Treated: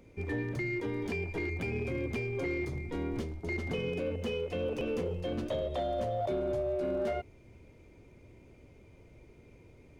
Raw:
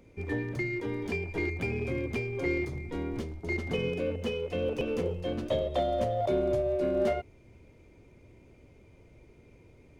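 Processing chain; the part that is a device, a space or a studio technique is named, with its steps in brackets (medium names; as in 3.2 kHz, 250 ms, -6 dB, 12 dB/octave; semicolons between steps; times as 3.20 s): soft clipper into limiter (saturation -19.5 dBFS, distortion -23 dB; peak limiter -26 dBFS, peak gain reduction 5 dB)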